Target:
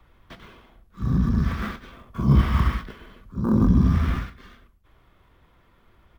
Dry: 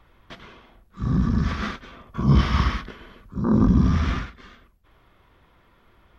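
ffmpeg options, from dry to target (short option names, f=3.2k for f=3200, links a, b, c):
-filter_complex "[0:a]lowshelf=f=180:g=4,asplit=2[a][b];[b]adelay=110.8,volume=-21dB,highshelf=f=4k:g=-2.49[c];[a][c]amix=inputs=2:normalize=0,acrossover=split=2900[d][e];[e]acompressor=threshold=-46dB:ratio=4:attack=1:release=60[f];[d][f]amix=inputs=2:normalize=0,acrossover=split=120|870[g][h][i];[i]acrusher=bits=4:mode=log:mix=0:aa=0.000001[j];[g][h][j]amix=inputs=3:normalize=0,volume=-2.5dB"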